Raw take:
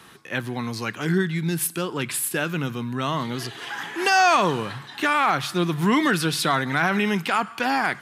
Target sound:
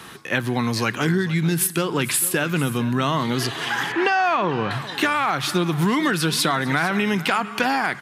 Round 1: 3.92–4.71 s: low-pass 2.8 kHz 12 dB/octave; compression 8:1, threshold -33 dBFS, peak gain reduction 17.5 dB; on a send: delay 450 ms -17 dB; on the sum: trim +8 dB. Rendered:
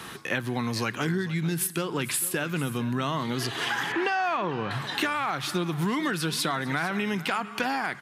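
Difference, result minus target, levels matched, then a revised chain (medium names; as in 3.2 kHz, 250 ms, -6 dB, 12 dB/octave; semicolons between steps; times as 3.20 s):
compression: peak gain reduction +7 dB
3.92–4.71 s: low-pass 2.8 kHz 12 dB/octave; compression 8:1, threshold -25 dBFS, peak gain reduction 10.5 dB; on a send: delay 450 ms -17 dB; on the sum: trim +8 dB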